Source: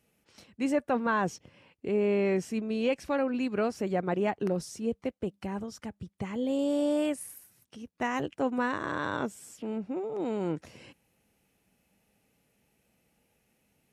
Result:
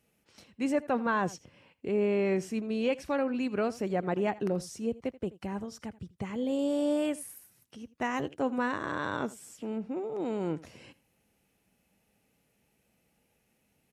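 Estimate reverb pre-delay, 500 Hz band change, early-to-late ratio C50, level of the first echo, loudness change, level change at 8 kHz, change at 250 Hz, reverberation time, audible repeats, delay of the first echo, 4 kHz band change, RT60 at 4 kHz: no reverb, -1.0 dB, no reverb, -19.5 dB, -1.0 dB, -1.0 dB, -1.0 dB, no reverb, 1, 82 ms, -1.0 dB, no reverb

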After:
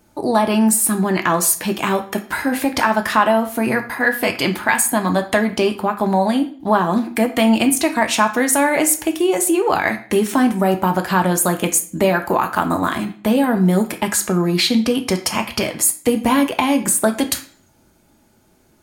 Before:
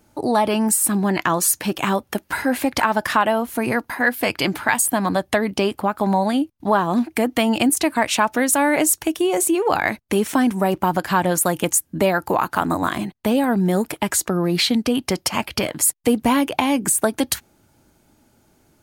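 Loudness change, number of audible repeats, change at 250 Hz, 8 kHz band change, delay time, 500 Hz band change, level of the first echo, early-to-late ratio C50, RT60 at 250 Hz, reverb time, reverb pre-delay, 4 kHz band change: +2.5 dB, no echo, +2.5 dB, +2.0 dB, no echo, +2.5 dB, no echo, 12.0 dB, 0.55 s, 0.45 s, 3 ms, +1.5 dB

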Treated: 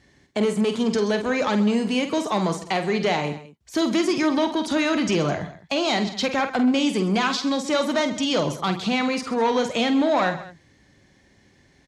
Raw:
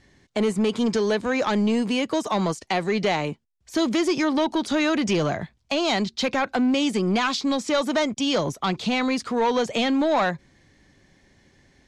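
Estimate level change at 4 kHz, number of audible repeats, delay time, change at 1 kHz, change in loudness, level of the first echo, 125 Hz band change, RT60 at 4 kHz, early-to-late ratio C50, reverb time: +0.5 dB, 3, 48 ms, +0.5 dB, +0.5 dB, -8.5 dB, +1.0 dB, no reverb, no reverb, no reverb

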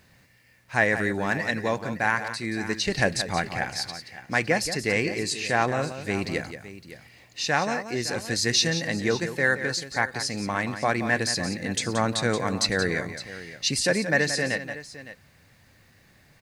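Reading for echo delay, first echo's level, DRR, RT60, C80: 177 ms, -10.5 dB, no reverb, no reverb, no reverb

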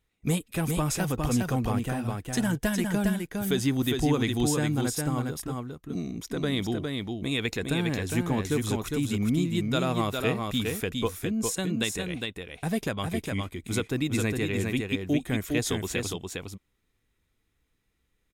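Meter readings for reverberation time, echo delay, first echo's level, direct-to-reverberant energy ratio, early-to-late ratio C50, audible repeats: no reverb, 408 ms, -4.0 dB, no reverb, no reverb, 1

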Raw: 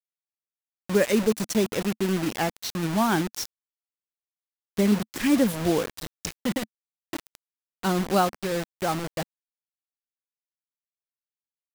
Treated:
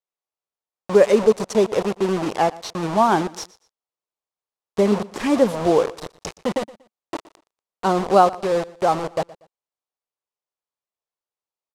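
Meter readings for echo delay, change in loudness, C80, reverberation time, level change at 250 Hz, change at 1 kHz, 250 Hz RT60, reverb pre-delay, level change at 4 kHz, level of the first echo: 119 ms, +5.5 dB, no reverb, no reverb, +1.0 dB, +9.0 dB, no reverb, no reverb, 0.0 dB, -20.5 dB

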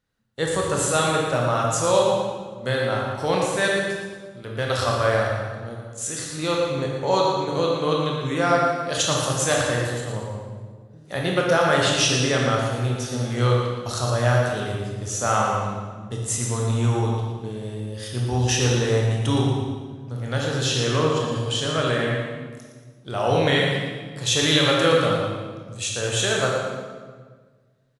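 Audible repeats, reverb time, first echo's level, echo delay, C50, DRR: 1, 1.6 s, -7.5 dB, 116 ms, -0.5 dB, -2.5 dB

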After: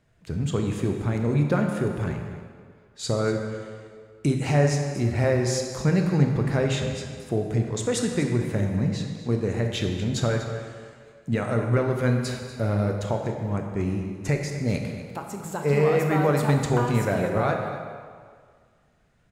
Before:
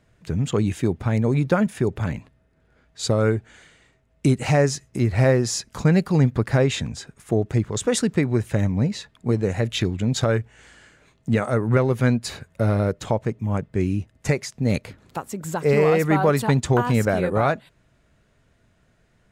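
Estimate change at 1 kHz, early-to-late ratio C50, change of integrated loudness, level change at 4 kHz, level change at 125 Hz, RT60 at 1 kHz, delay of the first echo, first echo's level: -3.0 dB, 4.0 dB, -3.0 dB, -3.5 dB, -2.5 dB, 1.9 s, 242 ms, -14.0 dB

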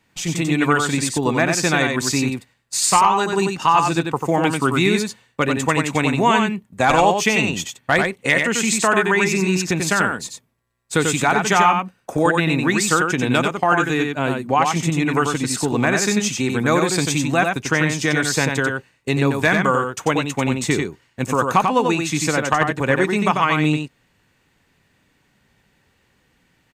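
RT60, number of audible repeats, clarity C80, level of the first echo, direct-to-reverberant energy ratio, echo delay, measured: no reverb, 1, no reverb, -4.5 dB, no reverb, 92 ms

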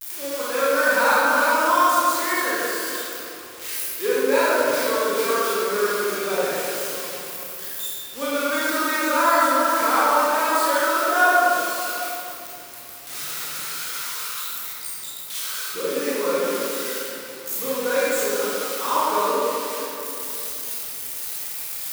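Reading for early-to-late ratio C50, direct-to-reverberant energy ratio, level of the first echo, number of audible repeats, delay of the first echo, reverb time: -5.0 dB, -10.0 dB, no echo, no echo, no echo, 2.9 s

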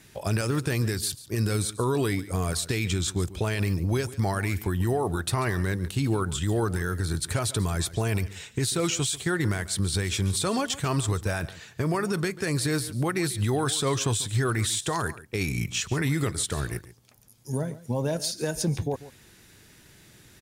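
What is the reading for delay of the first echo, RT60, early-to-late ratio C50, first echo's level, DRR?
142 ms, no reverb, no reverb, -17.0 dB, no reverb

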